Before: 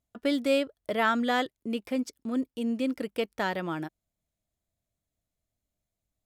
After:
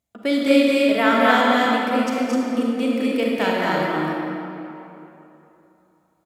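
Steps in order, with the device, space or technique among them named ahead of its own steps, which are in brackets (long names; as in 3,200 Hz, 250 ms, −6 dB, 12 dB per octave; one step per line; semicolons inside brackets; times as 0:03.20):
stadium PA (high-pass filter 130 Hz 6 dB per octave; parametric band 2,200 Hz +4 dB 0.21 octaves; loudspeakers that aren't time-aligned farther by 76 metres −3 dB, 87 metres −3 dB; convolution reverb RT60 3.1 s, pre-delay 31 ms, DRR −1.5 dB)
level +4 dB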